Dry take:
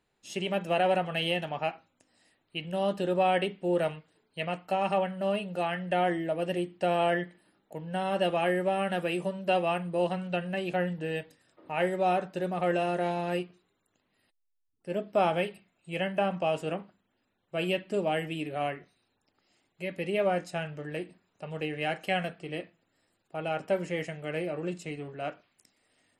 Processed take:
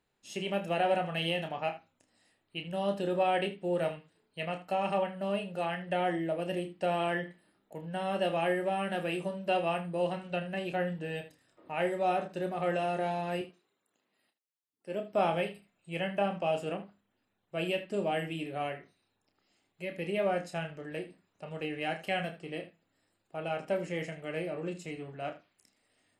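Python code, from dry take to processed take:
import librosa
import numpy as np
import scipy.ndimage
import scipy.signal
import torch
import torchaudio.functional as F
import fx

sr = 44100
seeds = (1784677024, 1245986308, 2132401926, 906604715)

y = fx.highpass(x, sr, hz=220.0, slope=12, at=(13.41, 15.12))
y = fx.room_early_taps(y, sr, ms=(30, 79), db=(-8.0, -15.0))
y = y * 10.0 ** (-3.5 / 20.0)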